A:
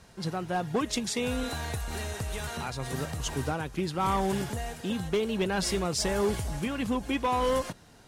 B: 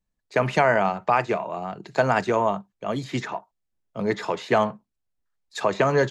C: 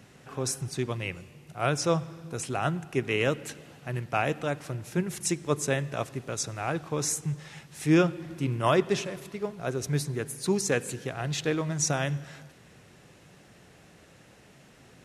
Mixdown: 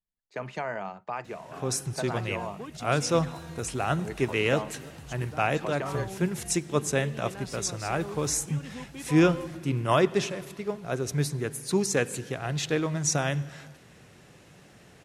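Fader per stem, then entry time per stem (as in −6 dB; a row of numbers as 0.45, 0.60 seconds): −12.5, −14.0, +1.0 decibels; 1.85, 0.00, 1.25 seconds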